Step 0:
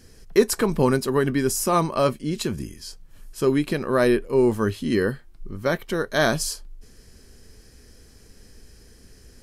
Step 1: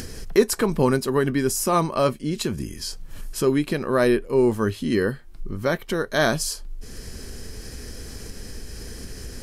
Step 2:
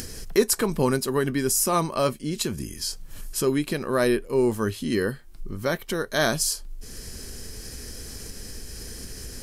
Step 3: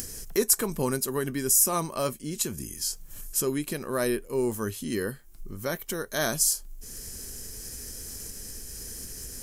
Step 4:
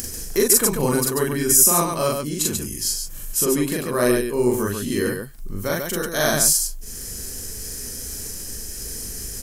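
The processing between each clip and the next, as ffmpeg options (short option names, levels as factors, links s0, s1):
-af "acompressor=mode=upward:threshold=0.0794:ratio=2.5"
-af "highshelf=f=4500:g=8,volume=0.708"
-af "aexciter=amount=3.4:drive=2.7:freq=6000,volume=0.531"
-af "aecho=1:1:40.82|139.9:1|0.631,volume=1.58"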